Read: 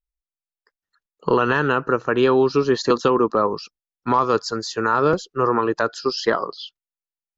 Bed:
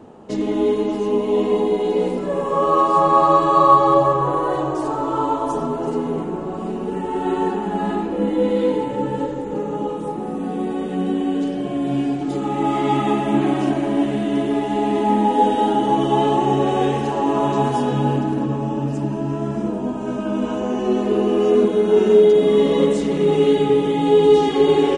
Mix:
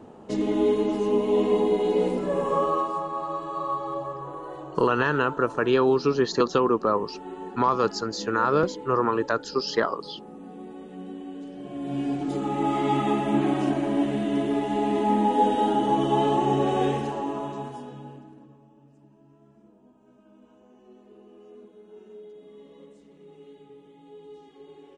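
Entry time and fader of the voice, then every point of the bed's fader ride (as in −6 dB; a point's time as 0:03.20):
3.50 s, −4.0 dB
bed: 0:02.53 −3.5 dB
0:03.10 −17 dB
0:11.46 −17 dB
0:12.15 −5 dB
0:16.90 −5 dB
0:18.71 −33 dB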